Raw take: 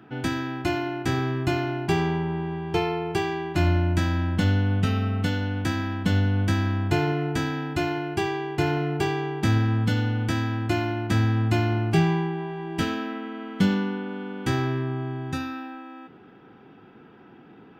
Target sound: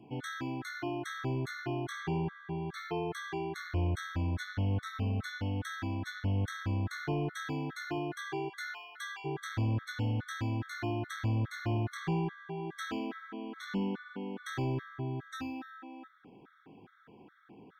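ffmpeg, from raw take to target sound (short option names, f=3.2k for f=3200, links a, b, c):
-filter_complex "[0:a]asplit=3[a][b][c];[a]afade=t=out:st=8.48:d=0.02[d];[b]highpass=f=1.1k:w=0.5412,highpass=f=1.1k:w=1.3066,afade=t=in:st=8.48:d=0.02,afade=t=out:st=9.24:d=0.02[e];[c]afade=t=in:st=9.24:d=0.02[f];[d][e][f]amix=inputs=3:normalize=0,asoftclip=type=tanh:threshold=-19.5dB,afftfilt=real='re*gt(sin(2*PI*2.4*pts/sr)*(1-2*mod(floor(b*sr/1024/1100),2)),0)':imag='im*gt(sin(2*PI*2.4*pts/sr)*(1-2*mod(floor(b*sr/1024/1100),2)),0)':win_size=1024:overlap=0.75,volume=-4.5dB"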